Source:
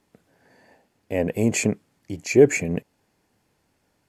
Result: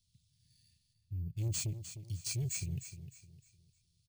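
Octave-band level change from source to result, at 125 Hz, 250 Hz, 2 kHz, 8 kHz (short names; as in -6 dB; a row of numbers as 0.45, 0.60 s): -6.5, -24.0, -24.0, -8.5 dB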